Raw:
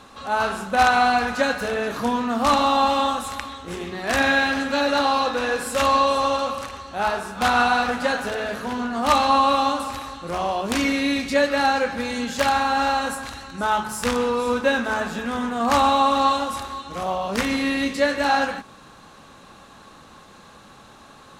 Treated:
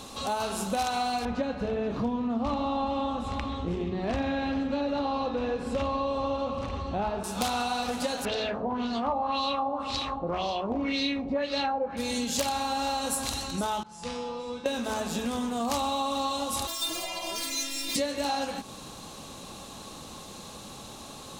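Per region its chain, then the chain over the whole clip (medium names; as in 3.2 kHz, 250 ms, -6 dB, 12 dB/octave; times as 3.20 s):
1.25–7.24 s: low-pass 2.4 kHz + bass shelf 290 Hz +10 dB
8.25–11.97 s: low-pass 11 kHz + LFO low-pass sine 1.9 Hz 690–4600 Hz
13.83–14.66 s: Gaussian low-pass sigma 1.5 samples + feedback comb 170 Hz, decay 0.69 s, mix 90%
16.67–17.96 s: compressor with a negative ratio -32 dBFS + overdrive pedal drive 35 dB, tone 6 kHz, clips at -13 dBFS + inharmonic resonator 330 Hz, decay 0.27 s, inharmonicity 0.002
whole clip: peaking EQ 1.6 kHz -12 dB 0.98 oct; compression 5:1, threshold -33 dBFS; treble shelf 3.9 kHz +8 dB; trim +4.5 dB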